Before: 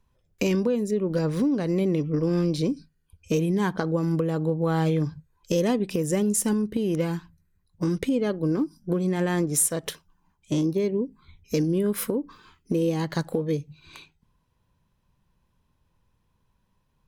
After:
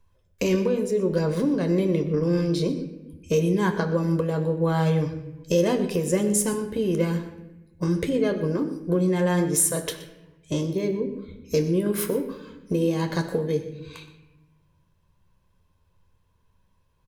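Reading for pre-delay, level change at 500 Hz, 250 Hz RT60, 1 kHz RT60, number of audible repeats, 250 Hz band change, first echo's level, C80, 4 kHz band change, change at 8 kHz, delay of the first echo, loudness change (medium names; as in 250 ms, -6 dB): 11 ms, +2.5 dB, 1.4 s, 0.85 s, 1, 0.0 dB, -16.5 dB, 11.0 dB, +1.5 dB, +1.5 dB, 122 ms, +1.0 dB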